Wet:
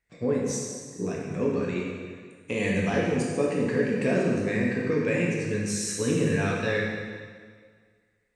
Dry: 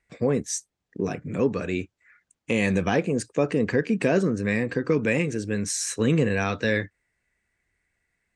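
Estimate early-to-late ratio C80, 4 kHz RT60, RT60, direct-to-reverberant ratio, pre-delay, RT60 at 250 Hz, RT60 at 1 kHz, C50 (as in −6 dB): 1.5 dB, 1.7 s, 1.8 s, −3.5 dB, 6 ms, 1.8 s, 1.8 s, 0.0 dB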